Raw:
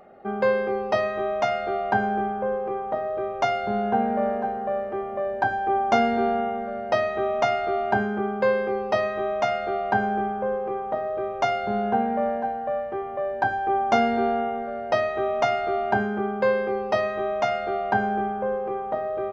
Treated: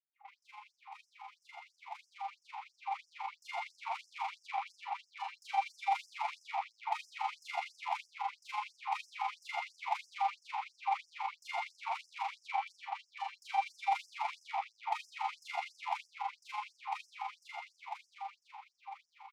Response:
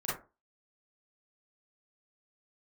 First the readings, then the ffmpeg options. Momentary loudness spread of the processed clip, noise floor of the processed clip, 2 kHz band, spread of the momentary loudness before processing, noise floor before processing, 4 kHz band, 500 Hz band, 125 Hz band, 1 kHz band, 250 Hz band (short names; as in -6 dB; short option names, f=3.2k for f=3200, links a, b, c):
16 LU, -78 dBFS, -13.5 dB, 6 LU, -32 dBFS, -8.5 dB, -32.0 dB, under -40 dB, -12.0 dB, under -40 dB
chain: -filter_complex "[0:a]lowshelf=f=260:g=7,aeval=exprs='(tanh(70.8*val(0)+0.5)-tanh(0.5))/70.8':c=same,adynamicequalizer=threshold=0.00158:dfrequency=2200:dqfactor=1.1:tfrequency=2200:tqfactor=1.1:attack=5:release=100:ratio=0.375:range=3.5:mode=cutabove:tftype=bell,tremolo=f=24:d=0.667,asplit=3[a][b][c];[a]bandpass=f=300:t=q:w=8,volume=0dB[d];[b]bandpass=f=870:t=q:w=8,volume=-6dB[e];[c]bandpass=f=2.24k:t=q:w=8,volume=-9dB[f];[d][e][f]amix=inputs=3:normalize=0,dynaudnorm=f=530:g=11:m=16dB,asplit=2[g][h];[h]adelay=99.13,volume=-9dB,highshelf=f=4k:g=-2.23[i];[g][i]amix=inputs=2:normalize=0,asplit=2[j][k];[1:a]atrim=start_sample=2205,asetrate=36603,aresample=44100[l];[k][l]afir=irnorm=-1:irlink=0,volume=-11.5dB[m];[j][m]amix=inputs=2:normalize=0,afftfilt=real='re*gte(b*sr/1024,670*pow(5100/670,0.5+0.5*sin(2*PI*3*pts/sr)))':imag='im*gte(b*sr/1024,670*pow(5100/670,0.5+0.5*sin(2*PI*3*pts/sr)))':win_size=1024:overlap=0.75,volume=9.5dB"